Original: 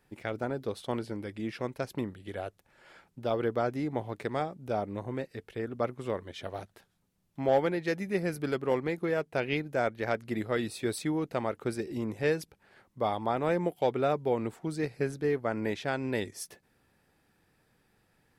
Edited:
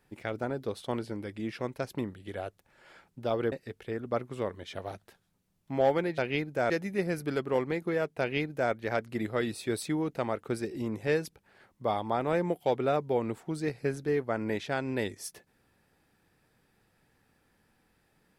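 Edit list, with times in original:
0:03.52–0:05.20: remove
0:09.36–0:09.88: duplicate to 0:07.86

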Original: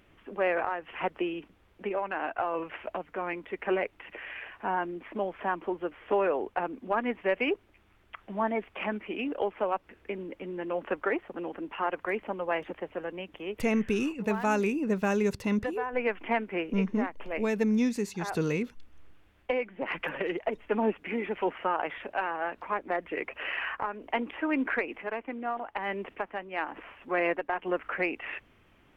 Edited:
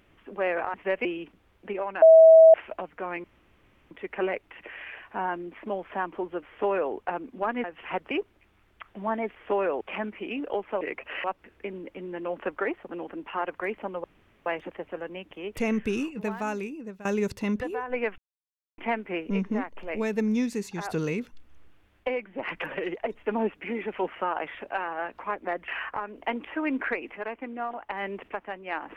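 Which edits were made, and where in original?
0:00.74–0:01.21: swap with 0:07.13–0:07.44
0:02.18–0:02.70: beep over 647 Hz −9 dBFS
0:03.40: splice in room tone 0.67 s
0:05.97–0:06.42: duplicate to 0:08.69
0:12.49: splice in room tone 0.42 s
0:14.06–0:15.08: fade out, to −18.5 dB
0:16.21: splice in silence 0.60 s
0:23.11–0:23.54: move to 0:09.69

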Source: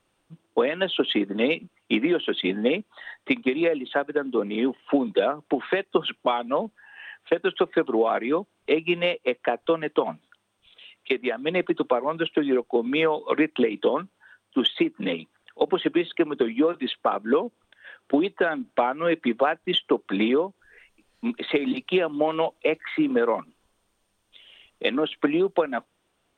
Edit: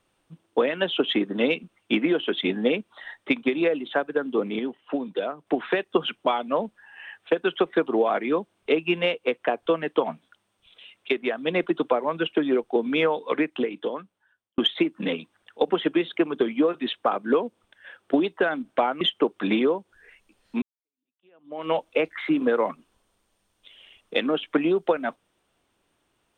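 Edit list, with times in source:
0:04.59–0:05.47: clip gain −6 dB
0:13.05–0:14.58: fade out
0:19.01–0:19.70: remove
0:21.31–0:22.38: fade in exponential

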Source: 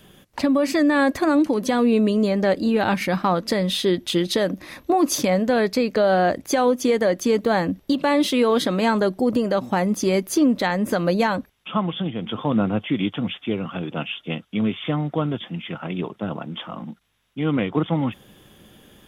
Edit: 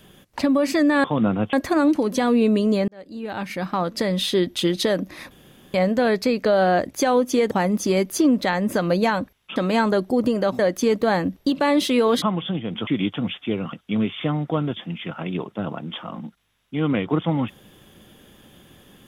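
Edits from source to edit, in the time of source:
0:02.39–0:03.72: fade in
0:04.82–0:05.25: fill with room tone
0:07.02–0:08.65: swap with 0:09.68–0:11.73
0:12.38–0:12.87: move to 0:01.04
0:13.73–0:14.37: remove

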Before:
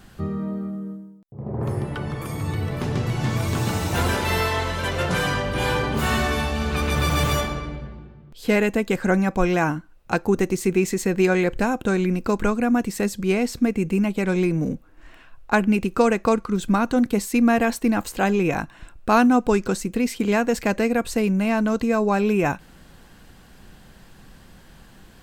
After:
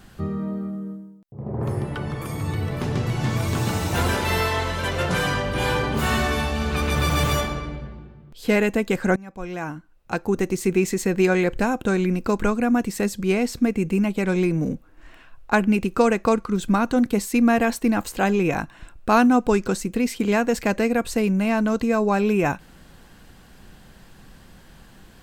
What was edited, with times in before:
0:09.16–0:10.72: fade in, from −23 dB

